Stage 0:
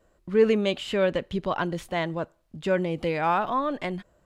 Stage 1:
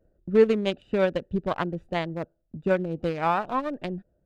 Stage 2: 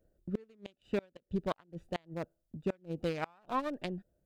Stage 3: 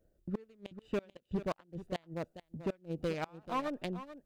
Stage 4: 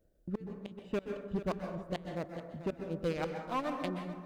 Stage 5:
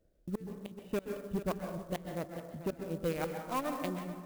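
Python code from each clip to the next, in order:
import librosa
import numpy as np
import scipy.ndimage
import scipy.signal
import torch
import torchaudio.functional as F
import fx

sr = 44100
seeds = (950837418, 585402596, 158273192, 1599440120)

y1 = fx.wiener(x, sr, points=41)
y1 = fx.transient(y1, sr, attack_db=4, sustain_db=-4)
y2 = fx.high_shelf(y1, sr, hz=3800.0, db=10.5)
y2 = fx.gate_flip(y2, sr, shuts_db=-14.0, range_db=-32)
y2 = y2 * 10.0 ** (-6.5 / 20.0)
y3 = np.clip(y2, -10.0 ** (-27.5 / 20.0), 10.0 ** (-27.5 / 20.0))
y3 = y3 + 10.0 ** (-13.0 / 20.0) * np.pad(y3, (int(437 * sr / 1000.0), 0))[:len(y3)]
y4 = fx.rev_plate(y3, sr, seeds[0], rt60_s=1.0, hf_ratio=0.4, predelay_ms=115, drr_db=4.5)
y5 = fx.clock_jitter(y4, sr, seeds[1], jitter_ms=0.032)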